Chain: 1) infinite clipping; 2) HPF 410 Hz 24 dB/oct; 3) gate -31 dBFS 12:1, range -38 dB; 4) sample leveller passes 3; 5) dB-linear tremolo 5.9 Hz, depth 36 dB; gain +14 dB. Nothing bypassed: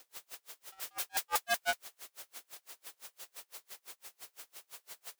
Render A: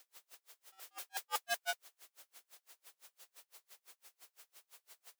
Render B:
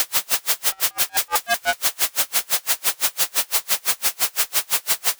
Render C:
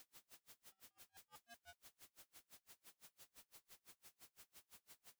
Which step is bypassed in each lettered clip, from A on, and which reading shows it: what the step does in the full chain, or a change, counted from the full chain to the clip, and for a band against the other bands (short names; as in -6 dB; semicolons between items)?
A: 4, crest factor change +6.0 dB; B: 3, momentary loudness spread change -15 LU; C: 2, 250 Hz band +12.0 dB